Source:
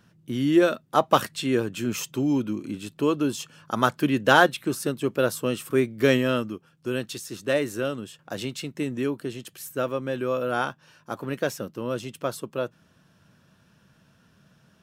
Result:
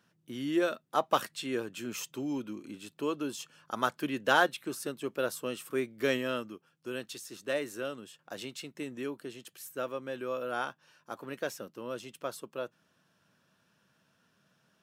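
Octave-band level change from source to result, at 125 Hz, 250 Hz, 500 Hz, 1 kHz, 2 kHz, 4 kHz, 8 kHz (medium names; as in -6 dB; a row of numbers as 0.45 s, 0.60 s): -16.0 dB, -11.0 dB, -9.0 dB, -7.5 dB, -7.0 dB, -7.0 dB, -7.0 dB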